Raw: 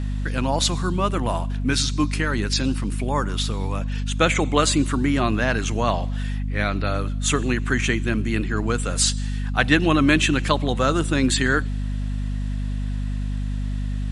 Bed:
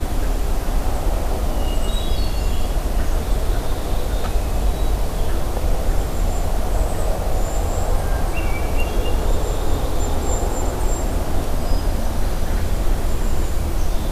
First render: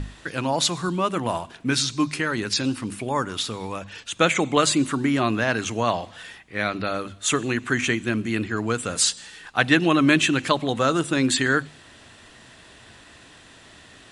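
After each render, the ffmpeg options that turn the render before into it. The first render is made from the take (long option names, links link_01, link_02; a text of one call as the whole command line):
ffmpeg -i in.wav -af "bandreject=frequency=50:width_type=h:width=6,bandreject=frequency=100:width_type=h:width=6,bandreject=frequency=150:width_type=h:width=6,bandreject=frequency=200:width_type=h:width=6,bandreject=frequency=250:width_type=h:width=6" out.wav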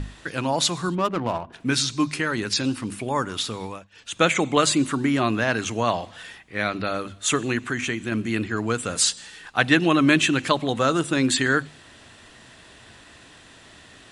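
ffmpeg -i in.wav -filter_complex "[0:a]asplit=3[link_01][link_02][link_03];[link_01]afade=type=out:start_time=0.94:duration=0.02[link_04];[link_02]adynamicsmooth=sensitivity=2.5:basefreq=1000,afade=type=in:start_time=0.94:duration=0.02,afade=type=out:start_time=1.52:duration=0.02[link_05];[link_03]afade=type=in:start_time=1.52:duration=0.02[link_06];[link_04][link_05][link_06]amix=inputs=3:normalize=0,asettb=1/sr,asplit=3[link_07][link_08][link_09];[link_07]atrim=end=7.604[link_10];[link_08]atrim=start=7.6:end=8.12,asetpts=PTS-STARTPTS,afade=type=in:duration=0.004:curve=qsin,afade=type=out:start_time=0.516:duration=0.004:curve=qsin,acompressor=threshold=-28dB:ratio=1.5:attack=3.2:release=140:knee=1:detection=peak[link_11];[link_09]atrim=start=8.116[link_12];[link_10][link_11]acrossfade=duration=0.004:curve1=hsin:curve2=qsin[link_13];[link_13][link_12]acrossfade=duration=0.004:curve1=qsin:curve2=hsin,asplit=3[link_14][link_15][link_16];[link_14]atrim=end=3.88,asetpts=PTS-STARTPTS,afade=type=out:start_time=3.63:duration=0.25:silence=0.0794328[link_17];[link_15]atrim=start=3.88:end=3.9,asetpts=PTS-STARTPTS,volume=-22dB[link_18];[link_16]atrim=start=3.9,asetpts=PTS-STARTPTS,afade=type=in:duration=0.25:silence=0.0794328[link_19];[link_17][link_18][link_19]concat=n=3:v=0:a=1" out.wav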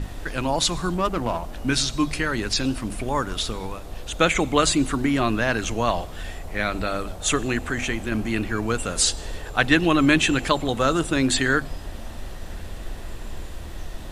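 ffmpeg -i in.wav -i bed.wav -filter_complex "[1:a]volume=-14.5dB[link_01];[0:a][link_01]amix=inputs=2:normalize=0" out.wav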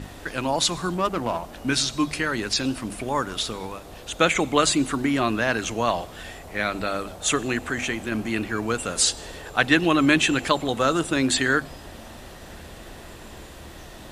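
ffmpeg -i in.wav -af "highpass=frequency=150:poles=1" out.wav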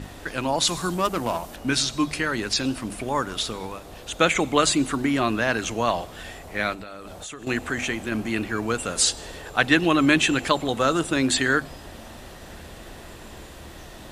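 ffmpeg -i in.wav -filter_complex "[0:a]asettb=1/sr,asplit=3[link_01][link_02][link_03];[link_01]atrim=end=0.674[link_04];[link_02]atrim=start=0.67:end=1.56,asetpts=PTS-STARTPTS,afade=type=in:duration=0.004:curve=qsin,afade=type=out:start_time=0.886:duration=0.004:curve=qsin,highshelf=frequency=5500:gain=10.5[link_05];[link_03]atrim=start=1.556[link_06];[link_04][link_05]acrossfade=duration=0.004:curve1=hsin:curve2=qsin[link_07];[link_07][link_06]acrossfade=duration=0.004:curve1=qsin:curve2=hsin,asettb=1/sr,asplit=3[link_08][link_09][link_10];[link_08]atrim=end=6.734[link_11];[link_09]atrim=start=6.73:end=7.47,asetpts=PTS-STARTPTS,afade=type=in:duration=0.004:curve=qsin,afade=type=out:start_time=0.736:duration=0.004:curve=qsin,acompressor=threshold=-34dB:ratio=8:attack=3.2:release=140:knee=1:detection=peak[link_12];[link_10]atrim=start=7.466[link_13];[link_11][link_12]acrossfade=duration=0.004:curve1=hsin:curve2=qsin[link_14];[link_14][link_13]acrossfade=duration=0.004:curve1=qsin:curve2=hsin" out.wav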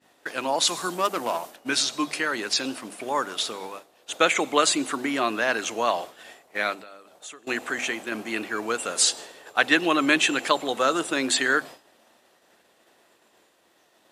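ffmpeg -i in.wav -af "highpass=350,agate=range=-33dB:threshold=-33dB:ratio=3:detection=peak" out.wav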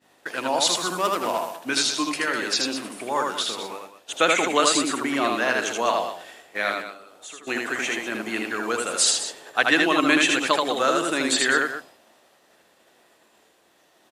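ffmpeg -i in.wav -af "aecho=1:1:78.72|201.2:0.708|0.282" out.wav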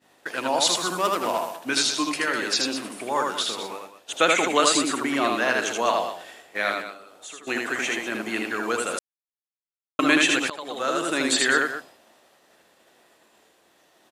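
ffmpeg -i in.wav -filter_complex "[0:a]asplit=4[link_01][link_02][link_03][link_04];[link_01]atrim=end=8.99,asetpts=PTS-STARTPTS,afade=type=out:start_time=8.986:duration=0.004:curve=hsin[link_05];[link_02]atrim=start=8.99:end=9.99,asetpts=PTS-STARTPTS,volume=0[link_06];[link_03]atrim=start=9.99:end=10.5,asetpts=PTS-STARTPTS,afade=type=in:duration=0.004:curve=hsin,afade=type=out:start_time=0.506:duration=0.004:curve=hsin:silence=0.1[link_07];[link_04]atrim=start=10.5,asetpts=PTS-STARTPTS,afade=type=in:duration=0.69:silence=0.1[link_08];[link_05][link_06][link_07][link_08]concat=n=4:v=0:a=1" out.wav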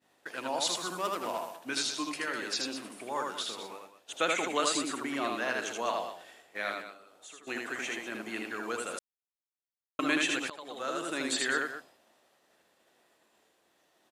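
ffmpeg -i in.wav -af "volume=-9.5dB" out.wav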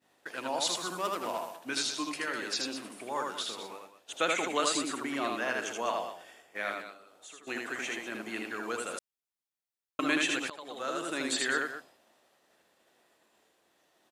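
ffmpeg -i in.wav -filter_complex "[0:a]asettb=1/sr,asplit=3[link_01][link_02][link_03];[link_01]atrim=end=5.364[link_04];[link_02]atrim=start=5.36:end=6.8,asetpts=PTS-STARTPTS,afade=type=in:duration=0.004:curve=qsin,afade=type=out:start_time=1.436:duration=0.004:curve=qsin,bandreject=frequency=4000:width=6.6[link_05];[link_03]atrim=start=6.796[link_06];[link_04][link_05]acrossfade=duration=0.004:curve1=hsin:curve2=qsin[link_07];[link_07][link_06]acrossfade=duration=0.004:curve1=qsin:curve2=hsin" out.wav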